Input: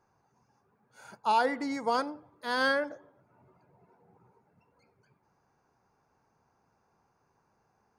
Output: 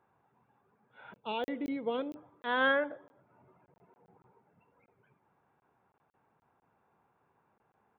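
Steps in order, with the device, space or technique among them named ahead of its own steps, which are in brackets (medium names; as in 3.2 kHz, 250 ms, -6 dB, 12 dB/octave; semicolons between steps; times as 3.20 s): call with lost packets (high-pass 120 Hz 6 dB/octave; resampled via 8 kHz; lost packets of 20 ms random); 1.13–2.16 s: high-order bell 1.2 kHz -13.5 dB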